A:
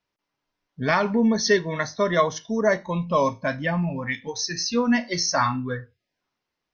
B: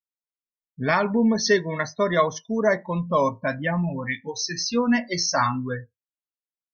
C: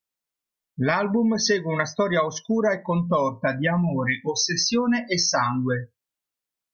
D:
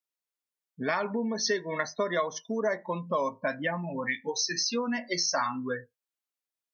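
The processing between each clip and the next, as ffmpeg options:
ffmpeg -i in.wav -af "afftdn=noise_reduction=30:noise_floor=-37" out.wav
ffmpeg -i in.wav -af "acompressor=threshold=-28dB:ratio=4,volume=8dB" out.wav
ffmpeg -i in.wav -af "highpass=260,volume=-6dB" out.wav

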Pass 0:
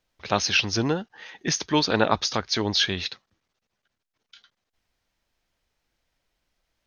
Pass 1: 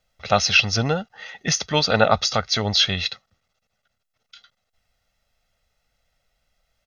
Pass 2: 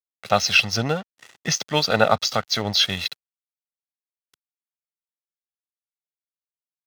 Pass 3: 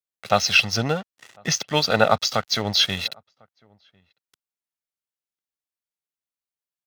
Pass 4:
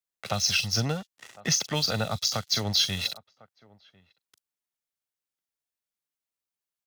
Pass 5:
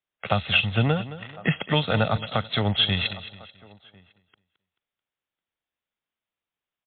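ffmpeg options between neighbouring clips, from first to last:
ffmpeg -i in.wav -af "aecho=1:1:1.5:0.72,volume=2.5dB" out.wav
ffmpeg -i in.wav -af "aeval=exprs='sgn(val(0))*max(abs(val(0))-0.0168,0)':channel_layout=same,highpass=95" out.wav
ffmpeg -i in.wav -filter_complex "[0:a]asplit=2[link_01][link_02];[link_02]adelay=1050,volume=-30dB,highshelf=frequency=4000:gain=-23.6[link_03];[link_01][link_03]amix=inputs=2:normalize=0" out.wav
ffmpeg -i in.wav -filter_complex "[0:a]acrossover=split=170|4500[link_01][link_02][link_03];[link_02]acompressor=threshold=-29dB:ratio=6[link_04];[link_03]asplit=2[link_05][link_06];[link_06]adelay=40,volume=-4.5dB[link_07];[link_05][link_07]amix=inputs=2:normalize=0[link_08];[link_01][link_04][link_08]amix=inputs=3:normalize=0" out.wav
ffmpeg -i in.wav -af "aecho=1:1:218|436|654:0.178|0.0676|0.0257,volume=7dB" -ar 8000 -c:a libmp3lame -b:a 40k out.mp3

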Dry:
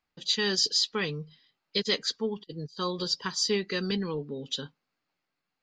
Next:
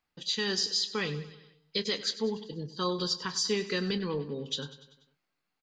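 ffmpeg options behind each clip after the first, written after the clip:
ffmpeg -i in.wav -filter_complex "[0:a]alimiter=limit=-19.5dB:level=0:latency=1:release=135,asplit=2[link_01][link_02];[link_02]adelay=28,volume=-13.5dB[link_03];[link_01][link_03]amix=inputs=2:normalize=0,aecho=1:1:97|194|291|388|485:0.178|0.0996|0.0558|0.0312|0.0175" out.wav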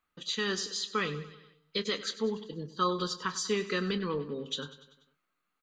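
ffmpeg -i in.wav -af "equalizer=frequency=125:width_type=o:width=0.33:gain=-10,equalizer=frequency=800:width_type=o:width=0.33:gain=-5,equalizer=frequency=1250:width_type=o:width=0.33:gain=10,equalizer=frequency=5000:width_type=o:width=0.33:gain=-10" out.wav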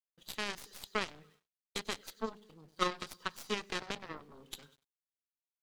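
ffmpeg -i in.wav -af "aeval=exprs='val(0)*gte(abs(val(0)),0.00299)':channel_layout=same,agate=range=-33dB:threshold=-48dB:ratio=3:detection=peak,aeval=exprs='0.168*(cos(1*acos(clip(val(0)/0.168,-1,1)))-cos(1*PI/2))+0.0473*(cos(3*acos(clip(val(0)/0.168,-1,1)))-cos(3*PI/2))+0.0106*(cos(4*acos(clip(val(0)/0.168,-1,1)))-cos(4*PI/2))+0.0106*(cos(5*acos(clip(val(0)/0.168,-1,1)))-cos(5*PI/2))+0.015*(cos(7*acos(clip(val(0)/0.168,-1,1)))-cos(7*PI/2))':channel_layout=same,volume=1.5dB" out.wav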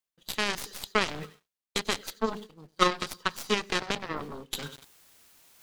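ffmpeg -i in.wav -af "agate=range=-10dB:threshold=-55dB:ratio=16:detection=peak,areverse,acompressor=mode=upward:threshold=-37dB:ratio=2.5,areverse,volume=9dB" out.wav

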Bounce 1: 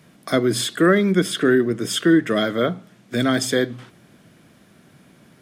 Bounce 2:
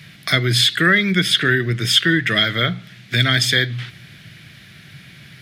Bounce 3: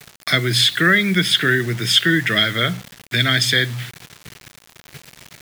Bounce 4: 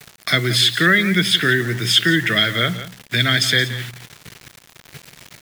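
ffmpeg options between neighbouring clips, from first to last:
ffmpeg -i in.wav -filter_complex "[0:a]equalizer=frequency=125:width_type=o:width=1:gain=8,equalizer=frequency=250:width_type=o:width=1:gain=-11,equalizer=frequency=500:width_type=o:width=1:gain=-9,equalizer=frequency=1000:width_type=o:width=1:gain=-10,equalizer=frequency=2000:width_type=o:width=1:gain=9,equalizer=frequency=4000:width_type=o:width=1:gain=8,equalizer=frequency=8000:width_type=o:width=1:gain=-6,asplit=2[link_01][link_02];[link_02]acompressor=threshold=-29dB:ratio=6,volume=3dB[link_03];[link_01][link_03]amix=inputs=2:normalize=0,volume=1.5dB" out.wav
ffmpeg -i in.wav -filter_complex "[0:a]acrossover=split=120[link_01][link_02];[link_01]alimiter=level_in=7dB:limit=-24dB:level=0:latency=1,volume=-7dB[link_03];[link_03][link_02]amix=inputs=2:normalize=0,acrusher=bits=5:mix=0:aa=0.000001" out.wav
ffmpeg -i in.wav -af "aecho=1:1:174:0.2" out.wav

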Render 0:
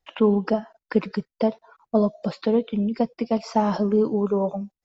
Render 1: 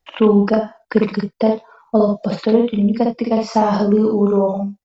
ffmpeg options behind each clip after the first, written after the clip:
ffmpeg -i in.wav -af "aecho=1:1:55|80:0.708|0.251,volume=5dB" out.wav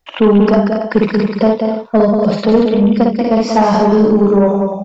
ffmpeg -i in.wav -af "aecho=1:1:186.6|277:0.501|0.282,acontrast=65,volume=-1dB" out.wav

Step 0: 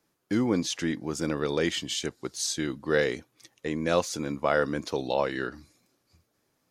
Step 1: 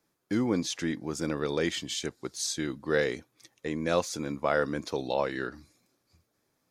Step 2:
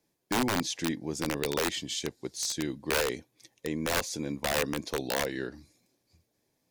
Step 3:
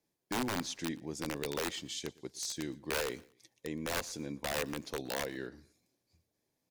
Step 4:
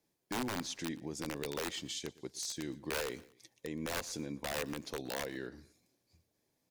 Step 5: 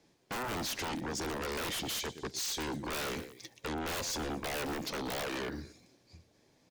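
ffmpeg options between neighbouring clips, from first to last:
ffmpeg -i in.wav -af "bandreject=frequency=2900:width=17,volume=-2dB" out.wav
ffmpeg -i in.wav -af "equalizer=frequency=1300:width=3.2:gain=-13,aeval=exprs='(mod(11.2*val(0)+1,2)-1)/11.2':channel_layout=same" out.wav
ffmpeg -i in.wav -af "aecho=1:1:117|234:0.075|0.024,volume=-6.5dB" out.wav
ffmpeg -i in.wav -af "alimiter=level_in=8.5dB:limit=-24dB:level=0:latency=1:release=189,volume=-8.5dB,volume=2.5dB" out.wav
ffmpeg -i in.wav -filter_complex "[0:a]acrossover=split=7200[link_01][link_02];[link_01]aeval=exprs='0.0376*sin(PI/2*5.01*val(0)/0.0376)':channel_layout=same[link_03];[link_02]aecho=1:1:121|242|363|484|605|726:0.631|0.297|0.139|0.0655|0.0308|0.0145[link_04];[link_03][link_04]amix=inputs=2:normalize=0,volume=-4.5dB" out.wav

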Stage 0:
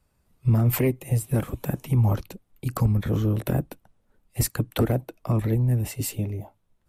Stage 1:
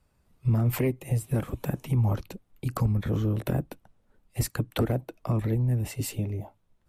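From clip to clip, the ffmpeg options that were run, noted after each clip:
ffmpeg -i in.wav -filter_complex "[0:a]highshelf=frequency=8700:gain=-6.5,asplit=2[link_01][link_02];[link_02]acompressor=threshold=-29dB:ratio=6,volume=1dB[link_03];[link_01][link_03]amix=inputs=2:normalize=0,volume=-6dB" out.wav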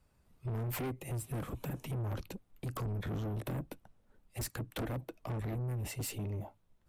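ffmpeg -i in.wav -af "asoftclip=type=tanh:threshold=-32dB,volume=-2dB" out.wav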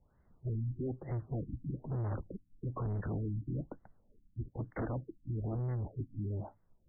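ffmpeg -i in.wav -af "afftfilt=real='re*lt(b*sr/1024,300*pow(2200/300,0.5+0.5*sin(2*PI*1.1*pts/sr)))':imag='im*lt(b*sr/1024,300*pow(2200/300,0.5+0.5*sin(2*PI*1.1*pts/sr)))':win_size=1024:overlap=0.75,volume=1dB" out.wav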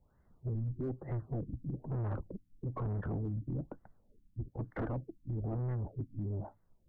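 ffmpeg -i in.wav -af "aeval=exprs='0.0316*(cos(1*acos(clip(val(0)/0.0316,-1,1)))-cos(1*PI/2))+0.00251*(cos(2*acos(clip(val(0)/0.0316,-1,1)))-cos(2*PI/2))+0.000794*(cos(6*acos(clip(val(0)/0.0316,-1,1)))-cos(6*PI/2))+0.000316*(cos(8*acos(clip(val(0)/0.0316,-1,1)))-cos(8*PI/2))':channel_layout=same,asoftclip=type=hard:threshold=-30.5dB" out.wav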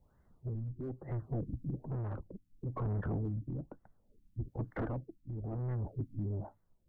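ffmpeg -i in.wav -af "tremolo=f=0.66:d=0.47,volume=1.5dB" out.wav

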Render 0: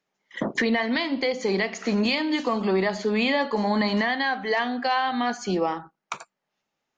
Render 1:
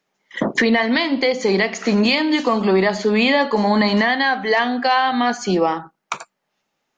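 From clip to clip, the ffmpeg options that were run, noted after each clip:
ffmpeg -i in.wav -af "equalizer=frequency=74:width=1.7:gain=-6,volume=7dB" out.wav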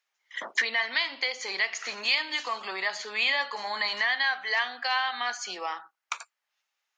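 ffmpeg -i in.wav -af "highpass=1300,volume=-5dB" out.wav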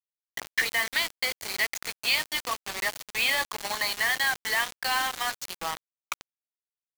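ffmpeg -i in.wav -af "acrusher=bits=4:mix=0:aa=0.000001" out.wav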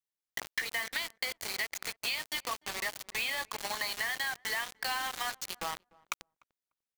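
ffmpeg -i in.wav -filter_complex "[0:a]acompressor=threshold=-31dB:ratio=6,asplit=2[link_01][link_02];[link_02]adelay=297,lowpass=frequency=830:poles=1,volume=-23dB,asplit=2[link_03][link_04];[link_04]adelay=297,lowpass=frequency=830:poles=1,volume=0.18[link_05];[link_01][link_03][link_05]amix=inputs=3:normalize=0" out.wav

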